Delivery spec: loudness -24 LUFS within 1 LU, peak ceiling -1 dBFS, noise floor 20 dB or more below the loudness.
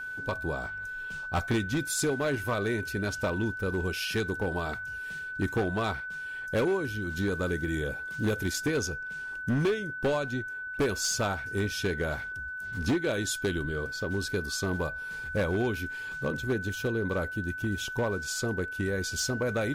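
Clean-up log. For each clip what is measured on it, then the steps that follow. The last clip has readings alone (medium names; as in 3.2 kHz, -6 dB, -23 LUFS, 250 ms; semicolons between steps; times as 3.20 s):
clipped samples 1.6%; clipping level -22.0 dBFS; steady tone 1.5 kHz; tone level -35 dBFS; loudness -31.0 LUFS; peak level -22.0 dBFS; loudness target -24.0 LUFS
-> clip repair -22 dBFS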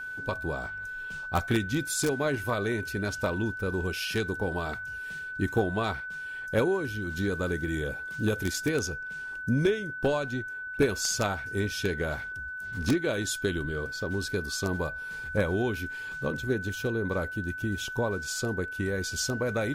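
clipped samples 0.0%; steady tone 1.5 kHz; tone level -35 dBFS
-> band-stop 1.5 kHz, Q 30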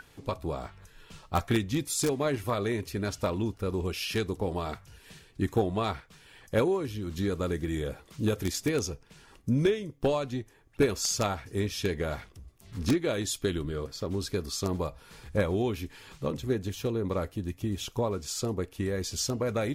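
steady tone not found; loudness -31.0 LUFS; peak level -12.5 dBFS; loudness target -24.0 LUFS
-> trim +7 dB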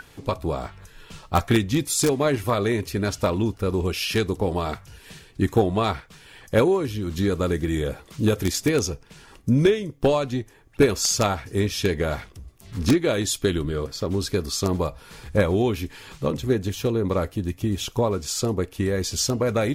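loudness -24.0 LUFS; peak level -5.5 dBFS; noise floor -51 dBFS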